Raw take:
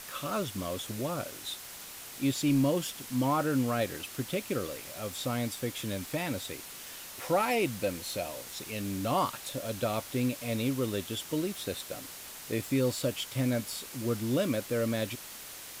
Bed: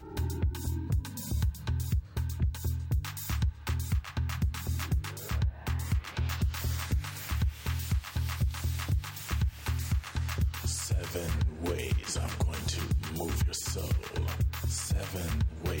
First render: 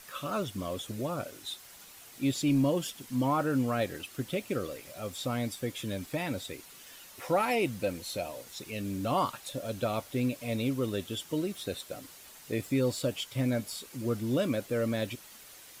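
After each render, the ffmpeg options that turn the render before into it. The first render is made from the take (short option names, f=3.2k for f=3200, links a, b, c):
-af "afftdn=nr=8:nf=-45"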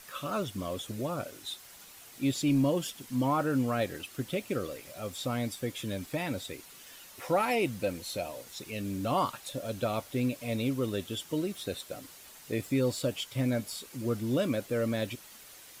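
-af anull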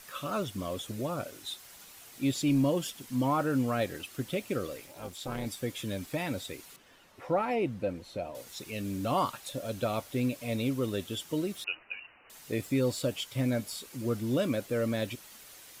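-filter_complex "[0:a]asplit=3[a][b][c];[a]afade=t=out:st=4.85:d=0.02[d];[b]tremolo=f=270:d=0.889,afade=t=in:st=4.85:d=0.02,afade=t=out:st=5.45:d=0.02[e];[c]afade=t=in:st=5.45:d=0.02[f];[d][e][f]amix=inputs=3:normalize=0,asettb=1/sr,asplit=3[g][h][i];[g]atrim=end=6.764[j];[h]atrim=start=6.76:end=8.35,asetpts=PTS-STARTPTS,afade=t=in:d=0.004:c=qsin,afade=t=out:st=1.586:d=0.004:c=qsin,lowpass=f=1.2k:p=1[k];[i]atrim=start=8.346[l];[j][k]acrossfade=d=0.004:c1=hsin:c2=qsin[m];[m][l]acrossfade=d=0.004:c1=qsin:c2=hsin,asettb=1/sr,asplit=3[n][o][p];[n]atrim=end=11.644[q];[o]atrim=start=11.64:end=12.3,asetpts=PTS-STARTPTS,afade=t=in:d=0.004:c=qsin,afade=t=out:st=0.656:d=0.004:c=qsin,lowpass=f=2.6k:t=q:w=0.5098,lowpass=f=2.6k:t=q:w=0.6013,lowpass=f=2.6k:t=q:w=0.9,lowpass=f=2.6k:t=q:w=2.563,afreqshift=-3000[r];[p]atrim=start=12.296[s];[q][r]acrossfade=d=0.004:c1=hsin:c2=qsin[t];[t][s]acrossfade=d=0.004:c1=qsin:c2=hsin"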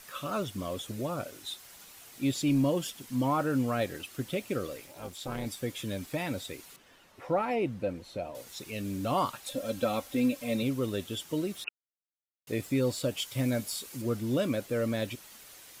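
-filter_complex "[0:a]asettb=1/sr,asplit=3[a][b][c];[a]atrim=end=9.464[d];[b]atrim=start=9.46:end=10.63,asetpts=PTS-STARTPTS,afade=t=in:d=0.004:c=qsin,afade=t=out:st=1.166:d=0.004:c=qsin,aecho=1:1:3.8:0.65,atrim=end_sample=51597[e];[c]atrim=start=10.626[f];[d][e]acrossfade=d=0.004:c1=hsin:c2=qsin[g];[g][f]acrossfade=d=0.004:c1=qsin:c2=hsin,asettb=1/sr,asplit=3[h][i][j];[h]atrim=end=13.174[k];[i]atrim=start=13.17:end=14.02,asetpts=PTS-STARTPTS,afade=t=in:d=0.004:c=qsin,afade=t=out:st=0.846:d=0.004:c=qsin,highshelf=f=4.4k:g=5.5[l];[j]atrim=start=14.016[m];[k][l]acrossfade=d=0.004:c1=hsin:c2=qsin[n];[n][m]acrossfade=d=0.004:c1=qsin:c2=hsin,asplit=3[o][p][q];[o]atrim=end=11.69,asetpts=PTS-STARTPTS,afade=t=out:st=11.686:d=0.004:c=hsin[r];[p]atrim=start=11.69:end=12.47,asetpts=PTS-STARTPTS,volume=0[s];[q]atrim=start=12.47,asetpts=PTS-STARTPTS,afade=t=in:d=0.004:c=hsin[t];[r][s][t]concat=n=3:v=0:a=1"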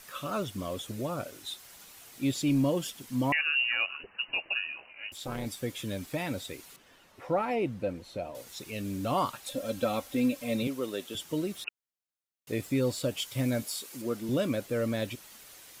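-filter_complex "[0:a]asettb=1/sr,asplit=3[a][b][c];[a]atrim=end=3.324[d];[b]atrim=start=3.32:end=5.12,asetpts=PTS-STARTPTS,afade=t=in:d=0.004:c=qsin,afade=t=out:st=1.796:d=0.004:c=qsin,lowpass=f=2.6k:t=q:w=0.5098,lowpass=f=2.6k:t=q:w=0.6013,lowpass=f=2.6k:t=q:w=0.9,lowpass=f=2.6k:t=q:w=2.563,afreqshift=-3000[e];[c]atrim=start=5.116[f];[d][e]acrossfade=d=0.004:c1=hsin:c2=qsin[g];[g][f]acrossfade=d=0.004:c1=qsin:c2=hsin,asettb=1/sr,asplit=3[h][i][j];[h]atrim=end=10.674[k];[i]atrim=start=10.67:end=11.15,asetpts=PTS-STARTPTS,afade=t=in:d=0.004:c=qsin,afade=t=out:st=0.476:d=0.004:c=qsin,highpass=290[l];[j]atrim=start=11.146[m];[k][l]acrossfade=d=0.004:c1=hsin:c2=qsin[n];[n][m]acrossfade=d=0.004:c1=qsin:c2=hsin,asettb=1/sr,asplit=3[o][p][q];[o]atrim=end=13.624[r];[p]atrim=start=13.62:end=14.29,asetpts=PTS-STARTPTS,afade=t=in:d=0.004:c=qsin,afade=t=out:st=0.666:d=0.004:c=qsin,highpass=210[s];[q]atrim=start=14.286[t];[r][s]acrossfade=d=0.004:c1=hsin:c2=qsin[u];[u][t]acrossfade=d=0.004:c1=qsin:c2=hsin"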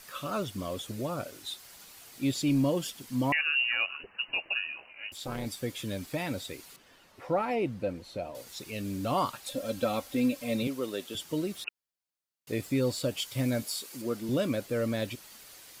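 -af "equalizer=f=4.6k:w=6.4:g=4"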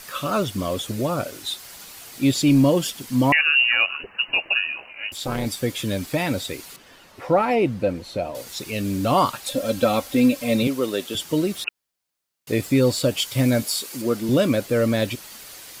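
-af "volume=10dB"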